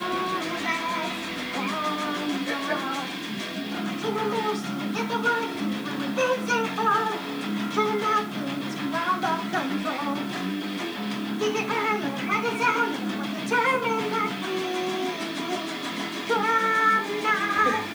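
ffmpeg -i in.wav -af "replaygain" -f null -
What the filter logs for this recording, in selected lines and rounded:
track_gain = +6.7 dB
track_peak = 0.237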